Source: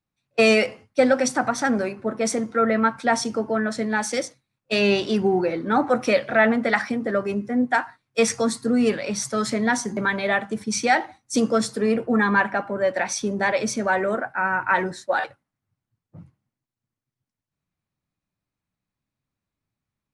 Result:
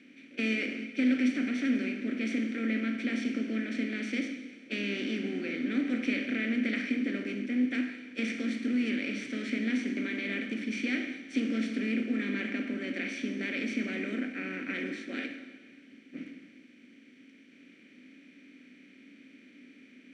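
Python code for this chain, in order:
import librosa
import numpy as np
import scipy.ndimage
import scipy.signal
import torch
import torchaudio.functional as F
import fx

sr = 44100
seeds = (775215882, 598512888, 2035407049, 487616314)

y = fx.bin_compress(x, sr, power=0.4)
y = fx.vowel_filter(y, sr, vowel='i')
y = fx.rev_schroeder(y, sr, rt60_s=1.5, comb_ms=28, drr_db=8.0)
y = y * librosa.db_to_amplitude(-4.5)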